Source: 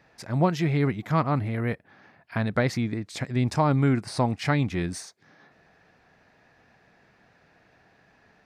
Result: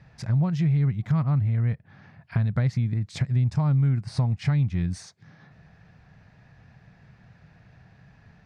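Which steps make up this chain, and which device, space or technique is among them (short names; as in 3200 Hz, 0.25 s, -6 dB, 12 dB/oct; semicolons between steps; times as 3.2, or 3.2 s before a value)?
jukebox (LPF 7700 Hz 12 dB/oct; resonant low shelf 210 Hz +13.5 dB, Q 1.5; compressor 3:1, threshold -24 dBFS, peak gain reduction 13 dB)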